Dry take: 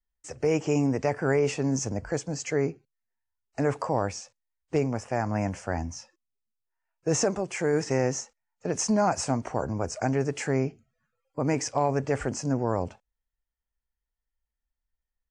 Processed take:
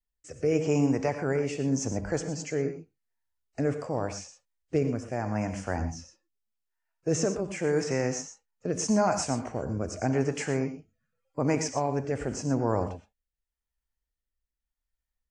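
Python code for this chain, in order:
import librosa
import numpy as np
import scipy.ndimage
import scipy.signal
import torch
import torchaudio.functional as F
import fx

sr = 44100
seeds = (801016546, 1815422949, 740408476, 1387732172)

y = fx.rotary(x, sr, hz=0.85)
y = fx.rev_gated(y, sr, seeds[0], gate_ms=140, shape='rising', drr_db=8.5)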